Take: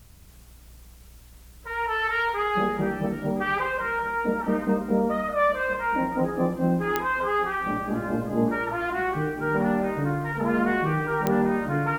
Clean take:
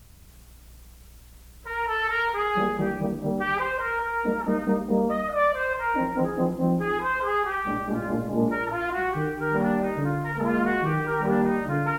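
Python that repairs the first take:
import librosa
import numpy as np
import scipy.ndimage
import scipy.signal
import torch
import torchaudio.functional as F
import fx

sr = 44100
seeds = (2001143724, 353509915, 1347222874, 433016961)

y = fx.fix_declick_ar(x, sr, threshold=10.0)
y = fx.fix_echo_inverse(y, sr, delay_ms=1013, level_db=-18.5)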